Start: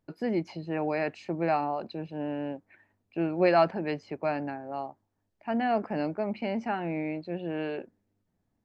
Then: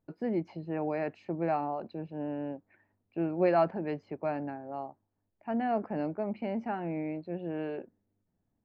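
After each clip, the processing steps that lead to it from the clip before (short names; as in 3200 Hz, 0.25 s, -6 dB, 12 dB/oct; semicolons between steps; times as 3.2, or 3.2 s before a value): LPF 1200 Hz 6 dB/oct; gain -2 dB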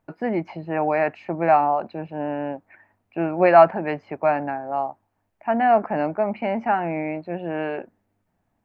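band shelf 1300 Hz +9 dB 2.4 oct; gain +6 dB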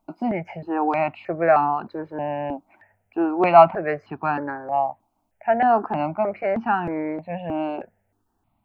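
step phaser 3.2 Hz 470–2100 Hz; gain +4 dB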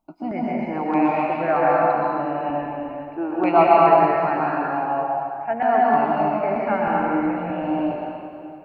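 plate-style reverb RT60 2.6 s, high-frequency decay 0.85×, pre-delay 0.11 s, DRR -6 dB; gain -5 dB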